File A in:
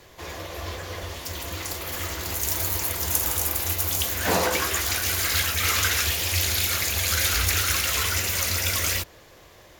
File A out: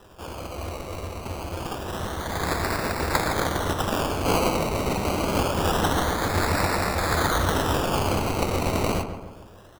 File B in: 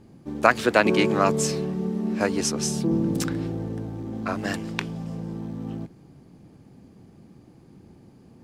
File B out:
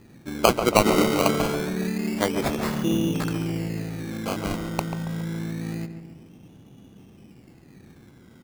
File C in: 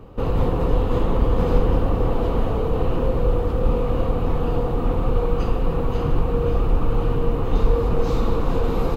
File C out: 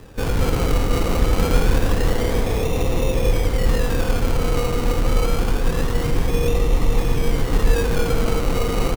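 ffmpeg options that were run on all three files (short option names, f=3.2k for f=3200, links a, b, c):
-filter_complex "[0:a]acrusher=samples=20:mix=1:aa=0.000001:lfo=1:lforange=12:lforate=0.26,asplit=2[a][b];[b]adelay=139,lowpass=f=1.9k:p=1,volume=-8.5dB,asplit=2[c][d];[d]adelay=139,lowpass=f=1.9k:p=1,volume=0.52,asplit=2[e][f];[f]adelay=139,lowpass=f=1.9k:p=1,volume=0.52,asplit=2[g][h];[h]adelay=139,lowpass=f=1.9k:p=1,volume=0.52,asplit=2[i][j];[j]adelay=139,lowpass=f=1.9k:p=1,volume=0.52,asplit=2[k][l];[l]adelay=139,lowpass=f=1.9k:p=1,volume=0.52[m];[a][c][e][g][i][k][m]amix=inputs=7:normalize=0"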